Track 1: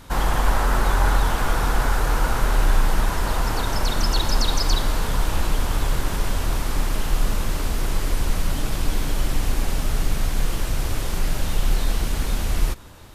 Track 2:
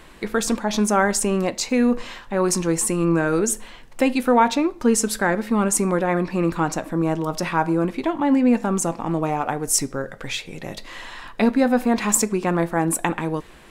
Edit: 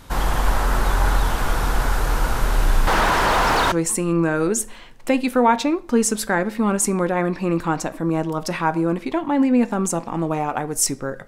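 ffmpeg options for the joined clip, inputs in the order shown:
-filter_complex "[0:a]asettb=1/sr,asplit=3[s0][s1][s2];[s0]atrim=end=2.874[s3];[s1]atrim=start=2.87:end=3.72,asetpts=PTS-STARTPTS,afade=t=in:d=0.004:c=qsin,afade=t=out:st=0.846:d=0.004:c=qsin,asplit=2[s4][s5];[s5]highpass=f=720:p=1,volume=17.8,asoftclip=type=tanh:threshold=0.422[s6];[s4][s6]amix=inputs=2:normalize=0,lowpass=f=1900:p=1,volume=0.501[s7];[s2]atrim=start=3.716[s8];[s3][s7]acrossfade=d=0.004:c1=hsin:c2=qsin[s9];[s9][s8]acrossfade=d=0.004:c1=qsin:c2=hsin,apad=whole_dur=11.27,atrim=end=11.27,atrim=end=3.722[s10];[1:a]atrim=start=2.638:end=10.19[s11];[s10][s11]acrossfade=d=0.004:c1=hsin:c2=hsin"

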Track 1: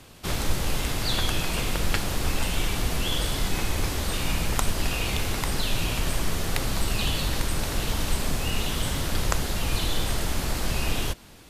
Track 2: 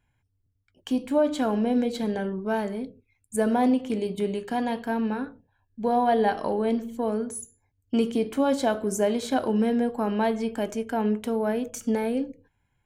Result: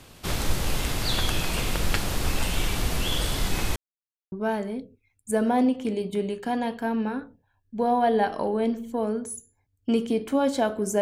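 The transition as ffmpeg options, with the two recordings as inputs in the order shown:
-filter_complex "[0:a]apad=whole_dur=11.01,atrim=end=11.01,asplit=2[s0][s1];[s0]atrim=end=3.76,asetpts=PTS-STARTPTS,afade=t=out:st=3.756:d=0.004:c=hsin[s2];[s1]atrim=start=3.76:end=4.32,asetpts=PTS-STARTPTS,volume=0[s3];[1:a]atrim=start=2.37:end=9.06,asetpts=PTS-STARTPTS,afade=t=in:d=0.004:c=hsin[s4];[s2][s3][s4]concat=n=3:v=0:a=1"

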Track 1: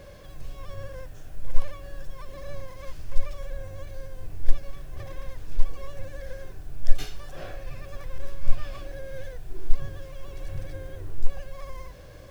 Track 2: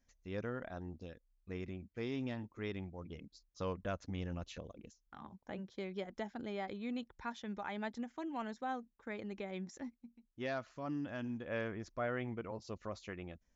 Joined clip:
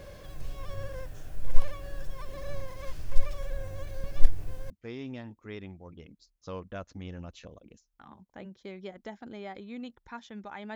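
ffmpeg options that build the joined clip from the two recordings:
-filter_complex "[0:a]apad=whole_dur=10.75,atrim=end=10.75,asplit=2[s0][s1];[s0]atrim=end=4.042[s2];[s1]atrim=start=4.038:end=4.702,asetpts=PTS-STARTPTS,areverse[s3];[1:a]atrim=start=1.828:end=7.88[s4];[s2][s3]acrossfade=d=0.004:c1=hsin:c2=hsin[s5];[s5][s4]acrossfade=d=0.004:c1=hsin:c2=hsin"

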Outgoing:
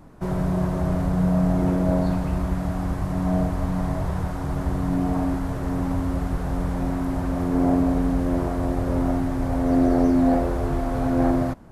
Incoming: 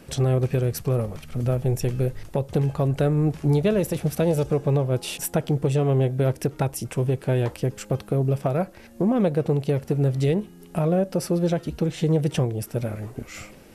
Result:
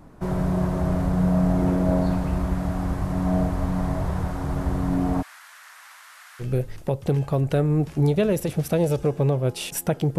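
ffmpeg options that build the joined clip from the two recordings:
-filter_complex "[0:a]asplit=3[s0][s1][s2];[s0]afade=t=out:st=5.21:d=0.02[s3];[s1]highpass=f=1500:w=0.5412,highpass=f=1500:w=1.3066,afade=t=in:st=5.21:d=0.02,afade=t=out:st=6.45:d=0.02[s4];[s2]afade=t=in:st=6.45:d=0.02[s5];[s3][s4][s5]amix=inputs=3:normalize=0,apad=whole_dur=10.18,atrim=end=10.18,atrim=end=6.45,asetpts=PTS-STARTPTS[s6];[1:a]atrim=start=1.86:end=5.65,asetpts=PTS-STARTPTS[s7];[s6][s7]acrossfade=d=0.06:c1=tri:c2=tri"

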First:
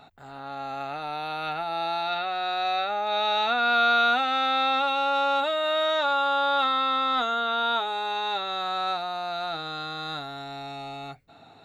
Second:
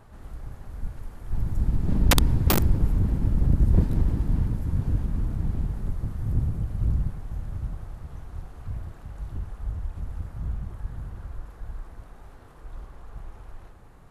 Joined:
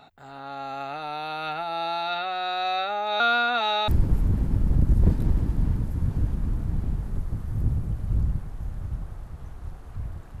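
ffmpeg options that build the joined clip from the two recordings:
-filter_complex "[0:a]apad=whole_dur=10.4,atrim=end=10.4,asplit=2[s0][s1];[s0]atrim=end=3.202[s2];[s1]atrim=start=3.198:end=3.882,asetpts=PTS-STARTPTS,areverse[s3];[1:a]atrim=start=2.588:end=9.11[s4];[s2][s3]acrossfade=d=0.004:c1=hsin:c2=hsin[s5];[s5][s4]acrossfade=d=0.004:c1=hsin:c2=hsin"

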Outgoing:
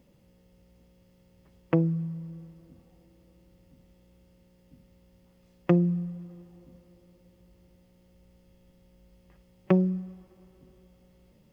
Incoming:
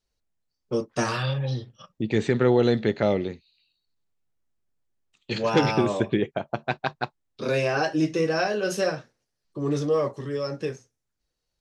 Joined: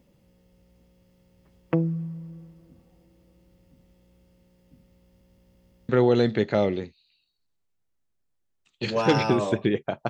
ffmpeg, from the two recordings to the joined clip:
-filter_complex "[0:a]apad=whole_dur=10.09,atrim=end=10.09,asplit=5[s0][s1][s2][s3][s4];[s0]atrim=end=5.212[s5];[s1]atrim=start=5.038:end=5.212[s6];[s2]atrim=start=5.038:end=5.212[s7];[s3]atrim=start=5.038:end=5.212[s8];[s4]atrim=start=5.038:end=5.212[s9];[1:a]atrim=start=2.368:end=6.57[s10];[s5][s6]acrossfade=d=0.004:c1=hsin:c2=hsin[s11];[s11][s7]acrossfade=d=0.004:c1=hsin:c2=hsin[s12];[s12][s8]acrossfade=d=0.004:c1=hsin:c2=hsin[s13];[s13][s9]acrossfade=d=0.004:c1=hsin:c2=hsin[s14];[s14][s10]acrossfade=d=0.004:c1=hsin:c2=hsin"

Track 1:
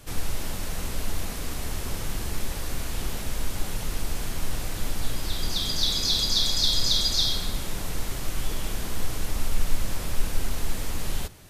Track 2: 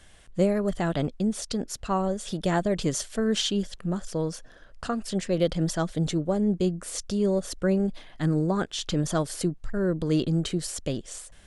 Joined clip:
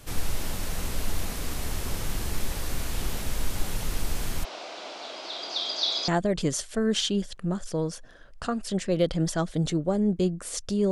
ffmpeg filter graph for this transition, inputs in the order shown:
-filter_complex "[0:a]asplit=3[s0][s1][s2];[s0]afade=t=out:st=4.43:d=0.02[s3];[s1]highpass=f=370:w=0.5412,highpass=f=370:w=1.3066,equalizer=f=450:t=q:w=4:g=-4,equalizer=f=660:t=q:w=4:g=8,equalizer=f=1800:t=q:w=4:g=-7,lowpass=f=5100:w=0.5412,lowpass=f=5100:w=1.3066,afade=t=in:st=4.43:d=0.02,afade=t=out:st=6.08:d=0.02[s4];[s2]afade=t=in:st=6.08:d=0.02[s5];[s3][s4][s5]amix=inputs=3:normalize=0,apad=whole_dur=10.91,atrim=end=10.91,atrim=end=6.082[s6];[1:a]atrim=start=2.488:end=7.32[s7];[s6][s7]acrossfade=d=0.004:c1=hsin:c2=hsin"

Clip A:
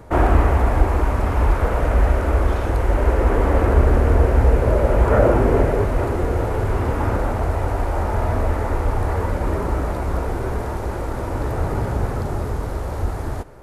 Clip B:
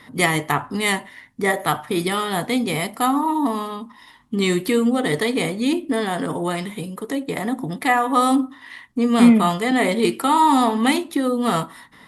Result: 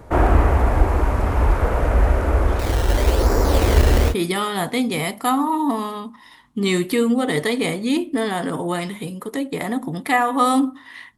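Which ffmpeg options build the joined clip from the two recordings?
-filter_complex "[0:a]asettb=1/sr,asplit=3[s0][s1][s2];[s0]atrim=end=2.594[s3];[s1]atrim=start=2.59:end=4.15,asetpts=PTS-STARTPTS,afade=t=in:d=0.004:c=qsin,afade=t=out:st=1.556:d=0.004:c=qsin,acrusher=samples=13:mix=1:aa=0.000001:lfo=1:lforange=13:lforate=0.98[s4];[s2]atrim=start=4.146[s5];[s3][s4]acrossfade=d=0.004:c1=hsin:c2=qsin[s6];[s6][s5]acrossfade=d=0.004:c1=qsin:c2=hsin,apad=whole_dur=11.17,atrim=end=11.17,atrim=end=4.15,asetpts=PTS-STARTPTS[s7];[1:a]atrim=start=1.83:end=8.93,asetpts=PTS-STARTPTS[s8];[s7][s8]acrossfade=d=0.08:c1=tri:c2=tri"

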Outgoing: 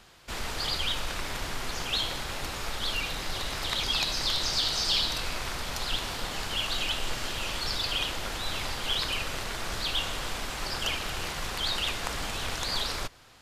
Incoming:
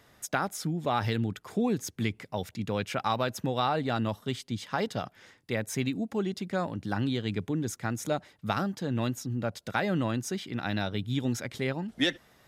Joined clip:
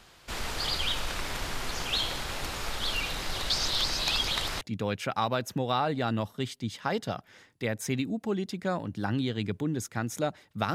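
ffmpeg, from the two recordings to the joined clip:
-filter_complex "[0:a]apad=whole_dur=10.74,atrim=end=10.74,asplit=2[s0][s1];[s0]atrim=end=3.502[s2];[s1]atrim=start=3.498:end=4.612,asetpts=PTS-STARTPTS,areverse[s3];[1:a]atrim=start=2.488:end=8.62[s4];[s2][s3]acrossfade=d=0.004:c1=hsin:c2=hsin[s5];[s5][s4]acrossfade=d=0.004:c1=hsin:c2=hsin"

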